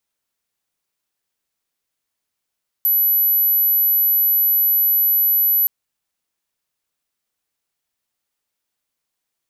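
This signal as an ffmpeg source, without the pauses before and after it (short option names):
-f lavfi -i "aevalsrc='0.224*sin(2*PI*11900*t)':d=2.82:s=44100"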